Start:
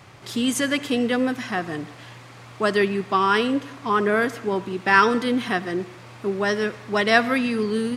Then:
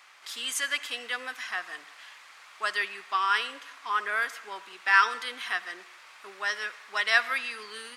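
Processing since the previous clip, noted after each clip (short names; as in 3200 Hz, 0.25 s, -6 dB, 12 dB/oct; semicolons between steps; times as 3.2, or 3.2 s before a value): Chebyshev high-pass 1400 Hz, order 2; gain -2.5 dB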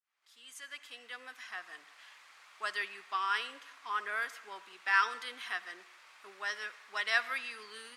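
opening faded in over 2.17 s; gain -7 dB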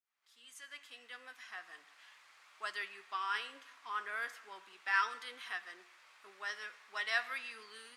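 flange 0.37 Hz, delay 5.7 ms, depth 8.2 ms, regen +73%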